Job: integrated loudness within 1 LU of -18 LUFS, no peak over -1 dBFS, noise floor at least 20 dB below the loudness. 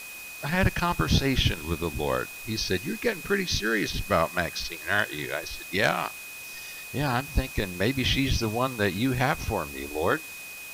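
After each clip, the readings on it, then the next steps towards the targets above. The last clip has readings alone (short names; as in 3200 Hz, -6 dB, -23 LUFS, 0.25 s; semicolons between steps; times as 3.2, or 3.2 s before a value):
steady tone 2500 Hz; tone level -40 dBFS; noise floor -41 dBFS; noise floor target -47 dBFS; loudness -27.0 LUFS; peak -11.5 dBFS; loudness target -18.0 LUFS
-> notch 2500 Hz, Q 30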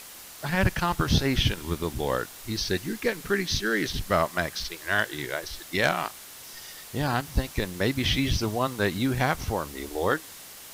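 steady tone none; noise floor -45 dBFS; noise floor target -48 dBFS
-> denoiser 6 dB, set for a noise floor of -45 dBFS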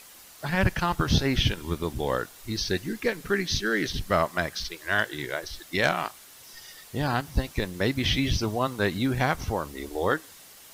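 noise floor -50 dBFS; loudness -27.5 LUFS; peak -11.0 dBFS; loudness target -18.0 LUFS
-> gain +9.5 dB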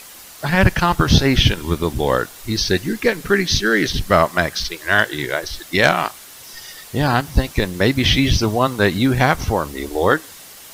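loudness -18.0 LUFS; peak -1.5 dBFS; noise floor -40 dBFS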